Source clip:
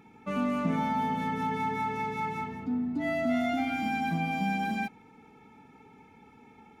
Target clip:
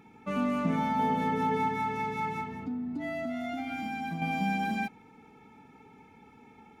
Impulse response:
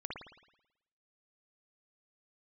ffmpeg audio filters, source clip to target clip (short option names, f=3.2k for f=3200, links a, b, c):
-filter_complex "[0:a]asettb=1/sr,asplit=3[a][b][c];[a]atrim=end=0.994[d];[b]atrim=start=0.99:end=1.68,asetpts=PTS-STARTPTS,afade=t=in:d=0.004:c=qsin,afade=t=out:st=0.686:d=0.004:c=qsin,equalizer=f=470:w=1.1:g=7[e];[c]atrim=start=1.676[f];[d][e]acrossfade=d=0.004:c1=hsin:c2=qsin[g];[g][f]acrossfade=d=0.004:c1=qsin:c2=hsin,asettb=1/sr,asplit=3[h][i][j];[h]atrim=end=2.404[k];[i]atrim=start=2.4:end=4.22,asetpts=PTS-STARTPTS,afade=t=in:d=0.004:c=qsin,afade=t=out:st=1.816:d=0.004:c=qsin,acompressor=threshold=-32dB:ratio=6[l];[j]atrim=start=4.216[m];[k][l]acrossfade=d=0.004:c1=hsin:c2=qsin[n];[n][m]acrossfade=d=0.004:c1=qsin:c2=hsin"